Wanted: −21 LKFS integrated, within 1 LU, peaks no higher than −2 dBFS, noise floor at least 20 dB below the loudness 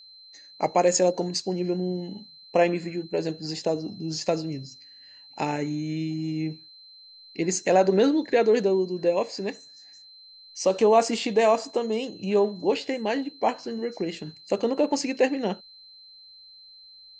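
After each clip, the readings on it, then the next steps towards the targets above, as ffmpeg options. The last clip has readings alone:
interfering tone 4,100 Hz; level of the tone −47 dBFS; integrated loudness −25.5 LKFS; sample peak −8.0 dBFS; target loudness −21.0 LKFS
→ -af "bandreject=frequency=4100:width=30"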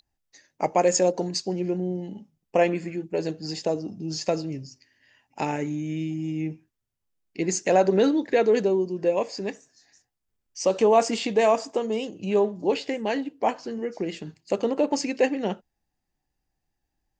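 interfering tone none found; integrated loudness −25.5 LKFS; sample peak −8.0 dBFS; target loudness −21.0 LKFS
→ -af "volume=4.5dB"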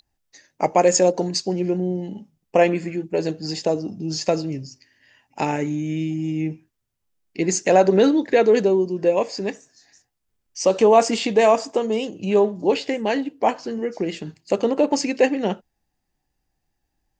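integrated loudness −21.0 LKFS; sample peak −3.5 dBFS; background noise floor −77 dBFS

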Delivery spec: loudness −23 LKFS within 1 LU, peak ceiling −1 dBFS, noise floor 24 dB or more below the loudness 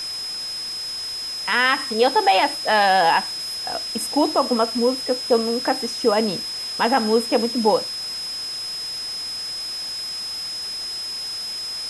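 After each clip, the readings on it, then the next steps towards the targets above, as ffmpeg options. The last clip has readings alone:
interfering tone 5,100 Hz; level of the tone −27 dBFS; background noise floor −30 dBFS; target noise floor −46 dBFS; integrated loudness −21.5 LKFS; sample peak −5.0 dBFS; target loudness −23.0 LKFS
→ -af "bandreject=frequency=5100:width=30"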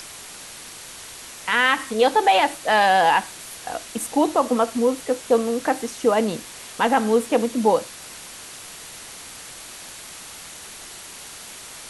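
interfering tone none found; background noise floor −40 dBFS; target noise floor −45 dBFS
→ -af "afftdn=noise_reduction=6:noise_floor=-40"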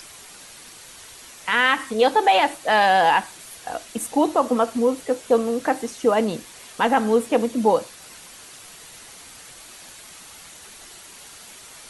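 background noise floor −44 dBFS; target noise floor −45 dBFS
→ -af "afftdn=noise_reduction=6:noise_floor=-44"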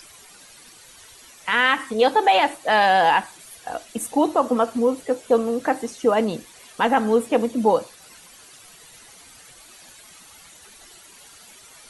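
background noise floor −48 dBFS; integrated loudness −20.5 LKFS; sample peak −5.5 dBFS; target loudness −23.0 LKFS
→ -af "volume=-2.5dB"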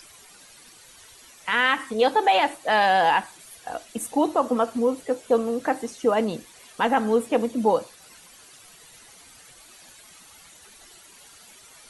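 integrated loudness −23.0 LKFS; sample peak −8.0 dBFS; background noise floor −50 dBFS

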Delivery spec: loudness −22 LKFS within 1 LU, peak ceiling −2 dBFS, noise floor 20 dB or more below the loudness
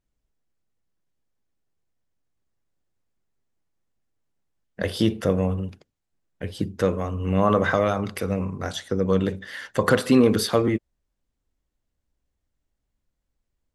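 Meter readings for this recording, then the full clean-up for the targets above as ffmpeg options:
integrated loudness −23.5 LKFS; sample peak −5.0 dBFS; target loudness −22.0 LKFS
→ -af "volume=1.5dB"

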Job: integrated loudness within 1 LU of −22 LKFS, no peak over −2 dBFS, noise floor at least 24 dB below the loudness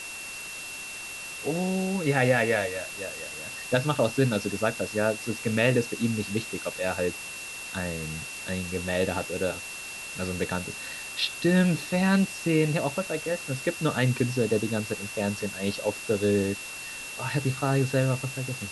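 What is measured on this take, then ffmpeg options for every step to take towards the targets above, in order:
interfering tone 2,700 Hz; level of the tone −38 dBFS; background noise floor −39 dBFS; target noise floor −52 dBFS; integrated loudness −28.0 LKFS; sample peak −8.5 dBFS; target loudness −22.0 LKFS
→ -af "bandreject=frequency=2700:width=30"
-af "afftdn=noise_reduction=13:noise_floor=-39"
-af "volume=6dB"

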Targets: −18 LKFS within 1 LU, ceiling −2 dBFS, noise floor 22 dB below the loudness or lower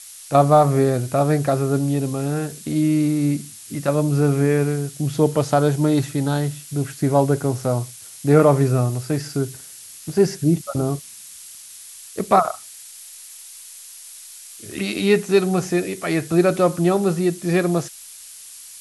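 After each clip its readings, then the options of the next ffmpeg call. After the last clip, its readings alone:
background noise floor −41 dBFS; target noise floor −42 dBFS; integrated loudness −20.0 LKFS; sample peak −2.5 dBFS; target loudness −18.0 LKFS
→ -af "afftdn=noise_reduction=6:noise_floor=-41"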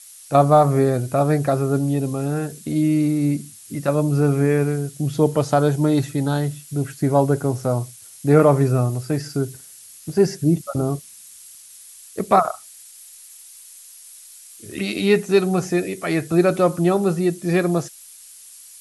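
background noise floor −44 dBFS; integrated loudness −20.0 LKFS; sample peak −2.5 dBFS; target loudness −18.0 LKFS
→ -af "volume=2dB,alimiter=limit=-2dB:level=0:latency=1"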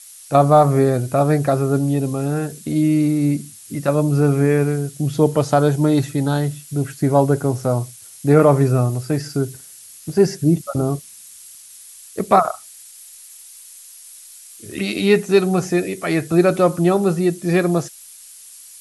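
integrated loudness −18.0 LKFS; sample peak −2.0 dBFS; background noise floor −42 dBFS

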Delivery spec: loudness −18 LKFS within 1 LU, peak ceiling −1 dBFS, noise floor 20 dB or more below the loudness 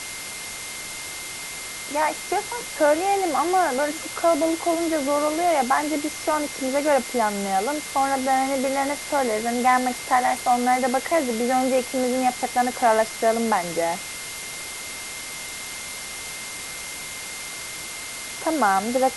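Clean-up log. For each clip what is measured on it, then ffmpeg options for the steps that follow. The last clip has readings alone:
interfering tone 2,100 Hz; level of the tone −38 dBFS; background noise floor −34 dBFS; target noise floor −44 dBFS; integrated loudness −23.5 LKFS; sample peak −7.5 dBFS; target loudness −18.0 LKFS
→ -af "bandreject=frequency=2100:width=30"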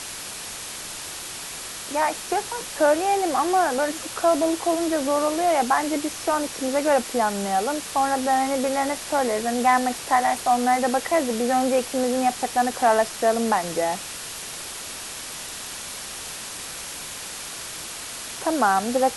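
interfering tone none found; background noise floor −35 dBFS; target noise floor −44 dBFS
→ -af "afftdn=noise_reduction=9:noise_floor=-35"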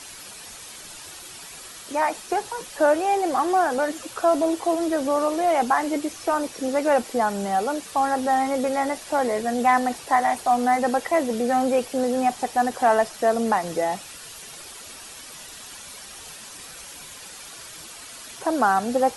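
background noise floor −41 dBFS; target noise floor −43 dBFS
→ -af "afftdn=noise_reduction=6:noise_floor=-41"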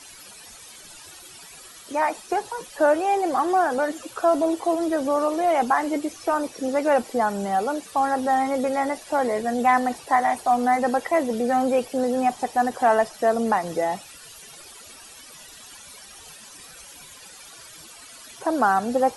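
background noise floor −45 dBFS; integrated loudness −23.0 LKFS; sample peak −8.0 dBFS; target loudness −18.0 LKFS
→ -af "volume=5dB"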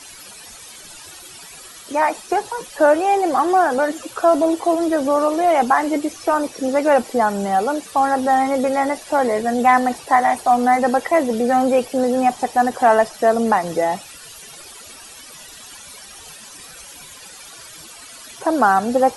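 integrated loudness −18.0 LKFS; sample peak −3.0 dBFS; background noise floor −40 dBFS

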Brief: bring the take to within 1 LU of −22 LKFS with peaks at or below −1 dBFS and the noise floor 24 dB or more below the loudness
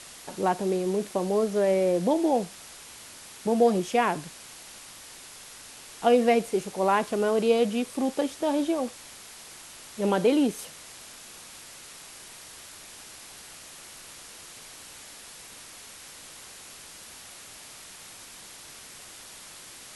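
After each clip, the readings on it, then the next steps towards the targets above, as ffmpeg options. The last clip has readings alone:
background noise floor −46 dBFS; target noise floor −50 dBFS; integrated loudness −25.5 LKFS; sample peak −9.0 dBFS; target loudness −22.0 LKFS
→ -af "afftdn=noise_reduction=6:noise_floor=-46"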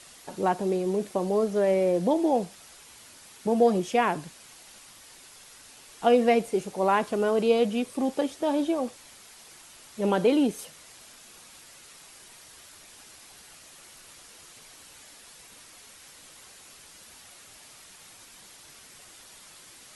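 background noise floor −51 dBFS; integrated loudness −25.5 LKFS; sample peak −9.0 dBFS; target loudness −22.0 LKFS
→ -af "volume=3.5dB"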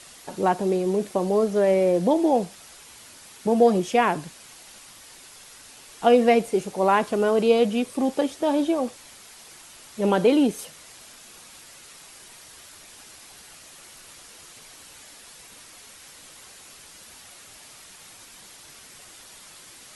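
integrated loudness −22.0 LKFS; sample peak −5.5 dBFS; background noise floor −47 dBFS

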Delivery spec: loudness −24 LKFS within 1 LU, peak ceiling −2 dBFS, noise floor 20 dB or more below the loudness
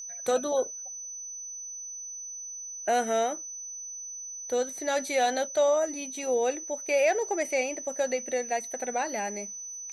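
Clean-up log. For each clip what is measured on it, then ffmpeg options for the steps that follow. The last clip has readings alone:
interfering tone 6,000 Hz; level of the tone −37 dBFS; integrated loudness −29.5 LKFS; sample peak −13.5 dBFS; target loudness −24.0 LKFS
→ -af "bandreject=frequency=6000:width=30"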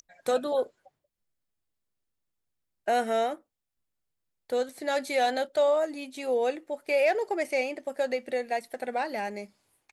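interfering tone none found; integrated loudness −29.0 LKFS; sample peak −14.0 dBFS; target loudness −24.0 LKFS
→ -af "volume=5dB"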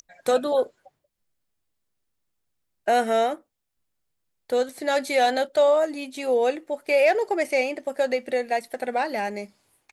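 integrated loudness −24.0 LKFS; sample peak −9.0 dBFS; background noise floor −77 dBFS

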